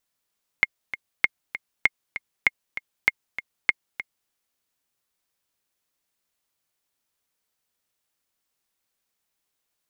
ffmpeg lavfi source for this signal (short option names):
-f lavfi -i "aevalsrc='pow(10,(-3.5-13*gte(mod(t,2*60/196),60/196))/20)*sin(2*PI*2140*mod(t,60/196))*exp(-6.91*mod(t,60/196)/0.03)':d=3.67:s=44100"